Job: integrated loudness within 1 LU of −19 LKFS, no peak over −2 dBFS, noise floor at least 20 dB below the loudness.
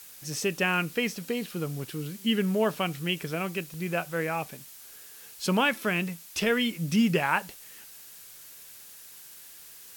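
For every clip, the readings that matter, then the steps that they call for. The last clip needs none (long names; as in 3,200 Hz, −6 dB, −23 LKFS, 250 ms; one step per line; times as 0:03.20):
number of dropouts 2; longest dropout 1.5 ms; background noise floor −48 dBFS; target noise floor −49 dBFS; integrated loudness −28.5 LKFS; sample peak −10.5 dBFS; target loudness −19.0 LKFS
→ repair the gap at 0:00.34/0:03.74, 1.5 ms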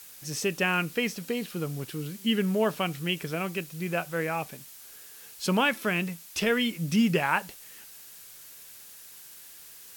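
number of dropouts 0; background noise floor −48 dBFS; target noise floor −49 dBFS
→ broadband denoise 6 dB, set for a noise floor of −48 dBFS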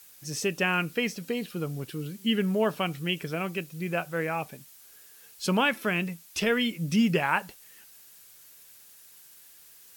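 background noise floor −53 dBFS; integrated loudness −28.5 LKFS; sample peak −10.5 dBFS; target loudness −19.0 LKFS
→ level +9.5 dB
brickwall limiter −2 dBFS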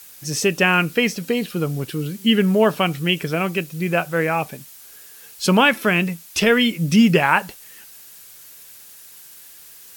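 integrated loudness −19.0 LKFS; sample peak −2.0 dBFS; background noise floor −44 dBFS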